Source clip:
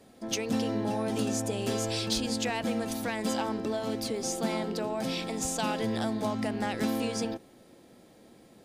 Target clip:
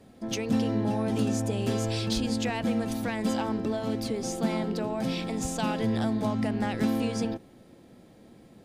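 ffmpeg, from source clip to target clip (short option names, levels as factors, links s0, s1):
-af "bass=f=250:g=7,treble=f=4000:g=-4"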